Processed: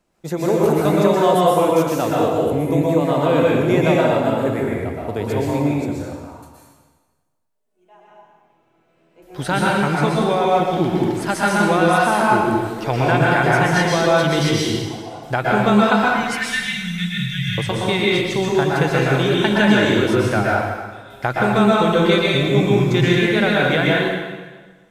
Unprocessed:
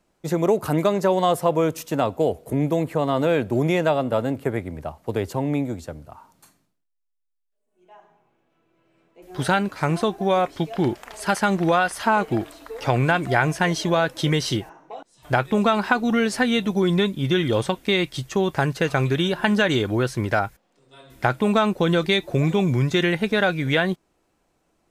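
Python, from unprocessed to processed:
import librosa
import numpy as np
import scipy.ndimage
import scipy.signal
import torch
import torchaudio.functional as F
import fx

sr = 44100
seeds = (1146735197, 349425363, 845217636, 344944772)

y = fx.ellip_bandstop(x, sr, low_hz=160.0, high_hz=1700.0, order=3, stop_db=40, at=(16.04, 17.58))
y = fx.rev_plate(y, sr, seeds[0], rt60_s=1.4, hf_ratio=0.9, predelay_ms=105, drr_db=-5.0)
y = y * 10.0 ** (-1.0 / 20.0)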